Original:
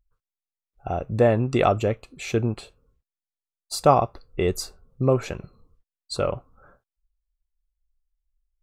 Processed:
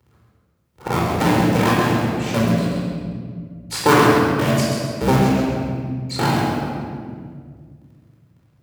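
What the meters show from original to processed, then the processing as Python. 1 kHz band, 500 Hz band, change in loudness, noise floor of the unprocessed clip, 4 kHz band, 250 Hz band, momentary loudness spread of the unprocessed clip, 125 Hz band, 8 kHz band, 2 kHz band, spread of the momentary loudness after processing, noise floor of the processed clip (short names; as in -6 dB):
+6.0 dB, +2.5 dB, +5.0 dB, under -85 dBFS, +9.0 dB, +10.5 dB, 17 LU, +7.0 dB, +7.0 dB, +13.0 dB, 16 LU, -61 dBFS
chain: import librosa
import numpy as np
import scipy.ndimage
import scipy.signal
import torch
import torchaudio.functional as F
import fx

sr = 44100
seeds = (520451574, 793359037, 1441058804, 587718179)

p1 = fx.cycle_switch(x, sr, every=2, mode='inverted')
p2 = scipy.signal.sosfilt(scipy.signal.butter(4, 82.0, 'highpass', fs=sr, output='sos'), p1)
p3 = fx.tremolo_random(p2, sr, seeds[0], hz=3.5, depth_pct=55)
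p4 = p3 + fx.echo_feedback(p3, sr, ms=133, feedback_pct=26, wet_db=-6.5, dry=0)
p5 = fx.room_shoebox(p4, sr, seeds[1], volume_m3=1500.0, walls='mixed', distance_m=4.4)
y = fx.band_squash(p5, sr, depth_pct=40)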